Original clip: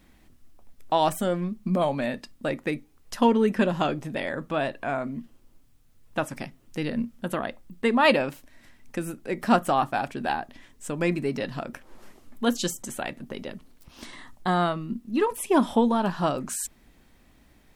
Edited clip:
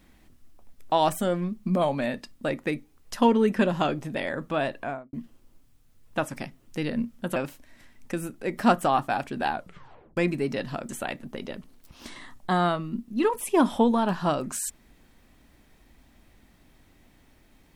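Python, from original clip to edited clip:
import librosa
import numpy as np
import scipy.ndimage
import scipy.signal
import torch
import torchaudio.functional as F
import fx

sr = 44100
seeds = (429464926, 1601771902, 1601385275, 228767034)

y = fx.studio_fade_out(x, sr, start_s=4.77, length_s=0.36)
y = fx.edit(y, sr, fx.cut(start_s=7.36, length_s=0.84),
    fx.tape_stop(start_s=10.36, length_s=0.65),
    fx.cut(start_s=11.73, length_s=1.13), tone=tone)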